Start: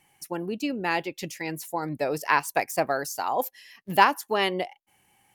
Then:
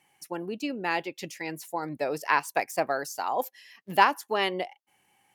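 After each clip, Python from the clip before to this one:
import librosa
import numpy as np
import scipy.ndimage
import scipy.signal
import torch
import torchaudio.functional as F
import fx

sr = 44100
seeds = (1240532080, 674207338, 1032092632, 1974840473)

y = fx.highpass(x, sr, hz=210.0, slope=6)
y = fx.high_shelf(y, sr, hz=8800.0, db=-6.0)
y = y * 10.0 ** (-1.5 / 20.0)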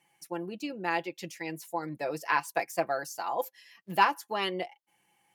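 y = x + 0.57 * np.pad(x, (int(5.9 * sr / 1000.0), 0))[:len(x)]
y = y * 10.0 ** (-4.5 / 20.0)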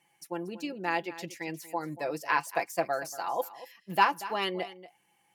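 y = x + 10.0 ** (-16.0 / 20.0) * np.pad(x, (int(235 * sr / 1000.0), 0))[:len(x)]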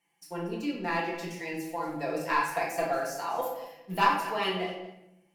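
y = fx.leveller(x, sr, passes=1)
y = fx.room_shoebox(y, sr, seeds[0], volume_m3=240.0, walls='mixed', distance_m=1.7)
y = y * 10.0 ** (-7.5 / 20.0)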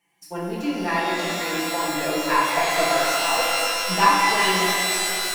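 y = fx.rev_shimmer(x, sr, seeds[1], rt60_s=3.4, semitones=12, shimmer_db=-2, drr_db=2.0)
y = y * 10.0 ** (5.0 / 20.0)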